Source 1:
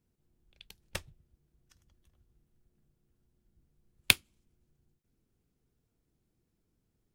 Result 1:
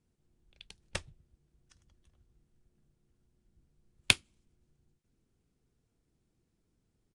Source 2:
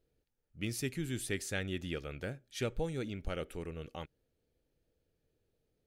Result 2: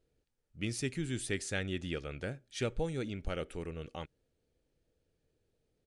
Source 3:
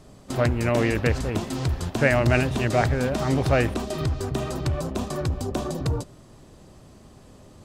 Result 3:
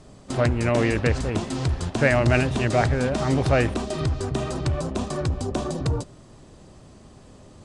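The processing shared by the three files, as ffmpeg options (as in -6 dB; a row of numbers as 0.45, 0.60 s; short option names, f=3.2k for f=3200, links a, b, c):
-af "aresample=22050,aresample=44100,acontrast=27,volume=-4dB"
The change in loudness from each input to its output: -1.5, +1.0, +1.0 LU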